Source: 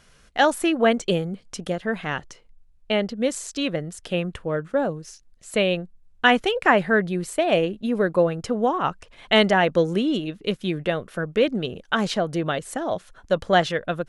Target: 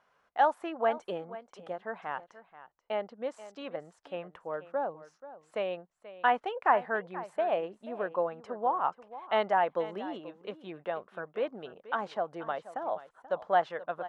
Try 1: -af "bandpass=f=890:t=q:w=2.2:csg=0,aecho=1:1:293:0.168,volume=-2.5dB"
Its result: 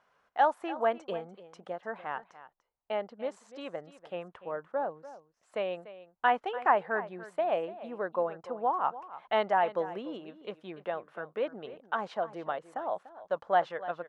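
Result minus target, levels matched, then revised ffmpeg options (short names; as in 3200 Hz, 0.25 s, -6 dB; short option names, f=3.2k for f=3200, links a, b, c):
echo 0.19 s early
-af "bandpass=f=890:t=q:w=2.2:csg=0,aecho=1:1:483:0.168,volume=-2.5dB"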